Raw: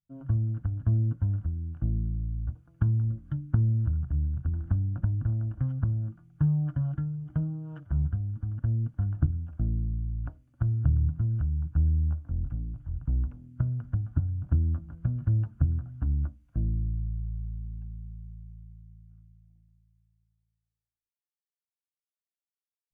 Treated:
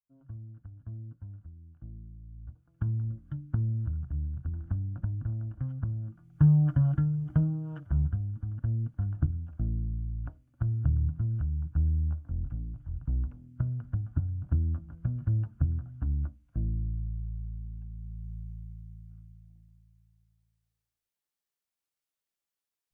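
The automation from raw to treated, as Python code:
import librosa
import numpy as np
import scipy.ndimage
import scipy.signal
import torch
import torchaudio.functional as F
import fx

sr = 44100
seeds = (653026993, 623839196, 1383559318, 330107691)

y = fx.gain(x, sr, db=fx.line((2.21, -16.5), (2.88, -5.0), (6.06, -5.0), (6.46, 4.5), (7.28, 4.5), (8.41, -2.5), (17.89, -2.5), (18.37, 4.5)))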